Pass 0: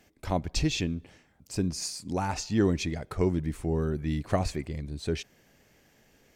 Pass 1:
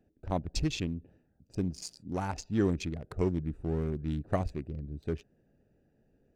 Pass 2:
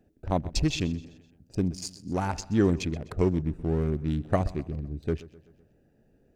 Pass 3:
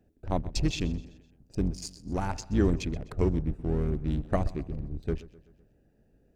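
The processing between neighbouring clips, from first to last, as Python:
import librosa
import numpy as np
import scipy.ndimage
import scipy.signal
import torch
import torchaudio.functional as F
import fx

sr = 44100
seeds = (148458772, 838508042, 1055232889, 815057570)

y1 = fx.wiener(x, sr, points=41)
y1 = F.gain(torch.from_numpy(y1), -3.0).numpy()
y2 = fx.echo_feedback(y1, sr, ms=127, feedback_pct=50, wet_db=-19)
y2 = F.gain(torch.from_numpy(y2), 5.0).numpy()
y3 = fx.octave_divider(y2, sr, octaves=2, level_db=-1.0)
y3 = F.gain(torch.from_numpy(y3), -3.0).numpy()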